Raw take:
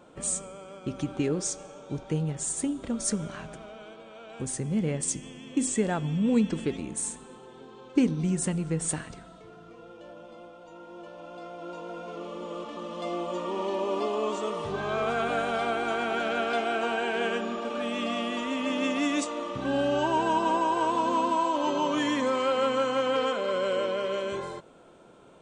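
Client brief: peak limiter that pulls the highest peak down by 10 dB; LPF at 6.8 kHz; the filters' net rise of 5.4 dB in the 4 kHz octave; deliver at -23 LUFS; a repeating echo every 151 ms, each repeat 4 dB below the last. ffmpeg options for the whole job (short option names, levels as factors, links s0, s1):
-af "lowpass=6800,equalizer=f=4000:t=o:g=8,alimiter=limit=0.0891:level=0:latency=1,aecho=1:1:151|302|453|604|755|906|1057|1208|1359:0.631|0.398|0.25|0.158|0.0994|0.0626|0.0394|0.0249|0.0157,volume=2"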